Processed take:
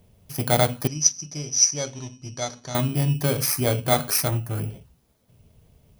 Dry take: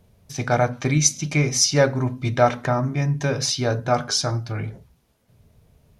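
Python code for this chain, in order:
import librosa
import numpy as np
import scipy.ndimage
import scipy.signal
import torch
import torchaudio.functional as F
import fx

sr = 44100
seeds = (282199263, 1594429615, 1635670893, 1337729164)

y = fx.bit_reversed(x, sr, seeds[0], block=16)
y = fx.ladder_lowpass(y, sr, hz=6000.0, resonance_pct=90, at=(0.87, 2.75))
y = fx.peak_eq(y, sr, hz=4300.0, db=-10.0, octaves=1.2, at=(4.28, 4.7))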